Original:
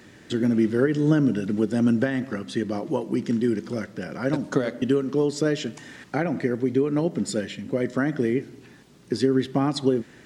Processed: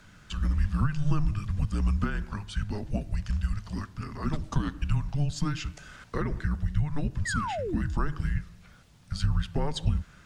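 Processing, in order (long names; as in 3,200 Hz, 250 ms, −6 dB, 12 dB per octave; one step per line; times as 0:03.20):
sound drawn into the spectrogram fall, 0:07.25–0:08.07, 240–2,300 Hz −28 dBFS
frequency shifter −300 Hz
level −4 dB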